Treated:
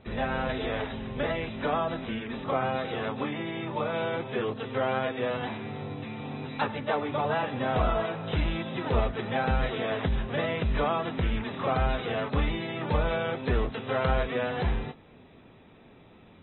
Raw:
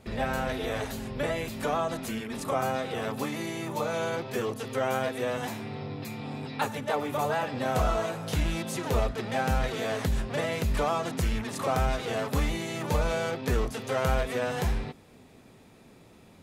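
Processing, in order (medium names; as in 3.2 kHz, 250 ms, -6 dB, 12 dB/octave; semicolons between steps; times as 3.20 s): AAC 16 kbps 24 kHz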